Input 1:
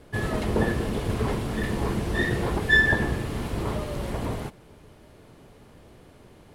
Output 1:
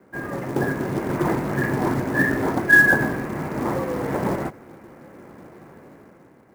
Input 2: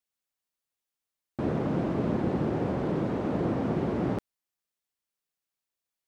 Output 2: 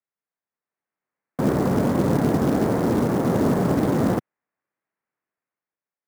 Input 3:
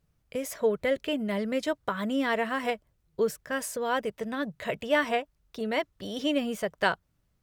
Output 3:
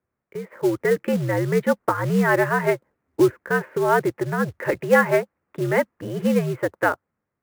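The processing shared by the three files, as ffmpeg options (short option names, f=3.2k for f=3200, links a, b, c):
-af "dynaudnorm=f=180:g=9:m=10dB,highpass=f=220:t=q:w=0.5412,highpass=f=220:t=q:w=1.307,lowpass=f=2.2k:t=q:w=0.5176,lowpass=f=2.2k:t=q:w=0.7071,lowpass=f=2.2k:t=q:w=1.932,afreqshift=-81,acrusher=bits=5:mode=log:mix=0:aa=0.000001"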